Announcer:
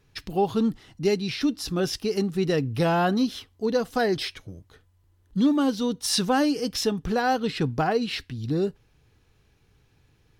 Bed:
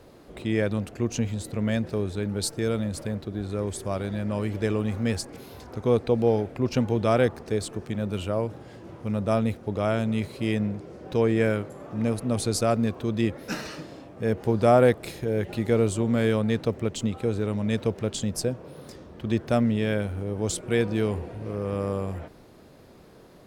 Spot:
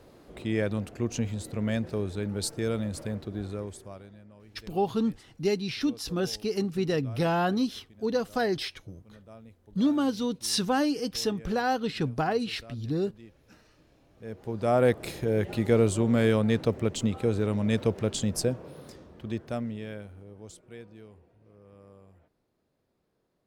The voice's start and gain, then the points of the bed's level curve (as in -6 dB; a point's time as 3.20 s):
4.40 s, -3.5 dB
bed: 3.45 s -3 dB
4.35 s -25.5 dB
13.73 s -25.5 dB
15.04 s 0 dB
18.53 s 0 dB
21.10 s -25 dB